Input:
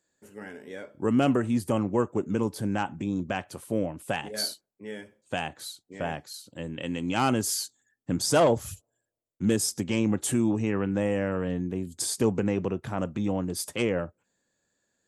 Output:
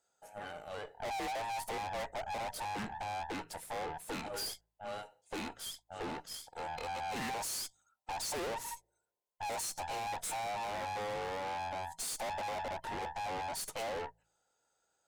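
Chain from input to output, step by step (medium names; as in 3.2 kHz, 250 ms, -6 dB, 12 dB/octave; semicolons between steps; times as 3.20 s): every band turned upside down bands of 1 kHz; valve stage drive 38 dB, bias 0.75; de-hum 54.87 Hz, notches 3; trim +1.5 dB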